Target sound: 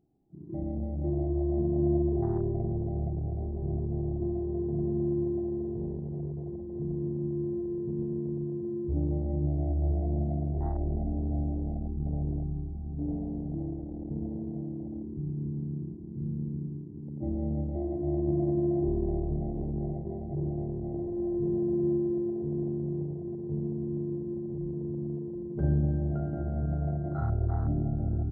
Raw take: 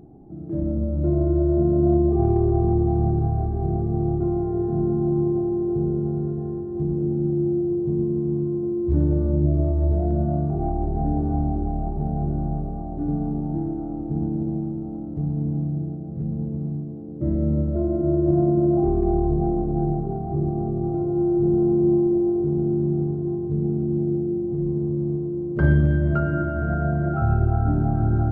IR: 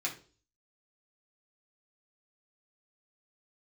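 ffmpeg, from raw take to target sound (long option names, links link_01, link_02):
-filter_complex "[0:a]asplit=2[link_01][link_02];[link_02]adelay=742,lowpass=frequency=960:poles=1,volume=-9dB,asplit=2[link_03][link_04];[link_04]adelay=742,lowpass=frequency=960:poles=1,volume=0.54,asplit=2[link_05][link_06];[link_06]adelay=742,lowpass=frequency=960:poles=1,volume=0.54,asplit=2[link_07][link_08];[link_08]adelay=742,lowpass=frequency=960:poles=1,volume=0.54,asplit=2[link_09][link_10];[link_10]adelay=742,lowpass=frequency=960:poles=1,volume=0.54,asplit=2[link_11][link_12];[link_12]adelay=742,lowpass=frequency=960:poles=1,volume=0.54[link_13];[link_03][link_05][link_07][link_09][link_11][link_13]amix=inputs=6:normalize=0[link_14];[link_01][link_14]amix=inputs=2:normalize=0,afwtdn=0.0708,volume=-9dB"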